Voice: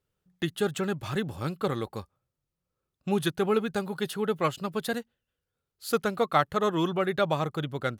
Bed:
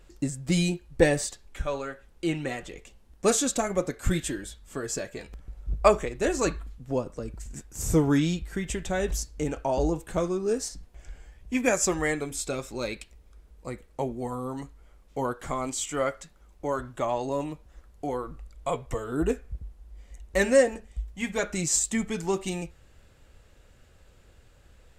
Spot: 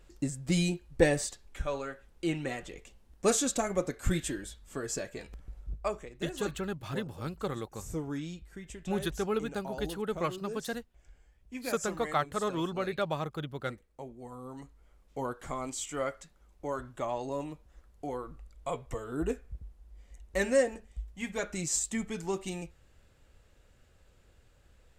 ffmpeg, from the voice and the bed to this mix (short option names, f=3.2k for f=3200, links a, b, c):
-filter_complex "[0:a]adelay=5800,volume=-6dB[a];[1:a]volume=4.5dB,afade=t=out:st=5.57:d=0.24:silence=0.298538,afade=t=in:st=14.18:d=0.85:silence=0.398107[b];[a][b]amix=inputs=2:normalize=0"